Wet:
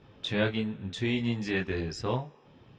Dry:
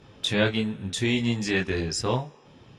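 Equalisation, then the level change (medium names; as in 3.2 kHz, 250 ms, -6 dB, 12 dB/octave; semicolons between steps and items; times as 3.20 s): distance through air 140 m; -4.0 dB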